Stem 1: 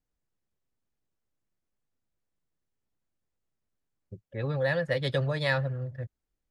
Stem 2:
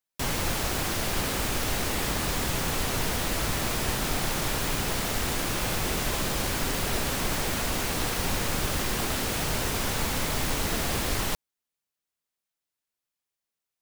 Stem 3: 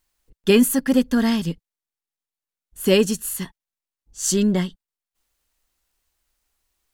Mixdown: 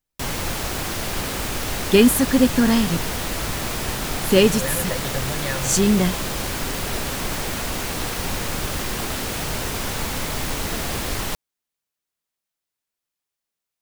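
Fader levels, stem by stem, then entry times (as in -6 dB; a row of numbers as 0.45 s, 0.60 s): -2.0 dB, +2.0 dB, +1.5 dB; 0.00 s, 0.00 s, 1.45 s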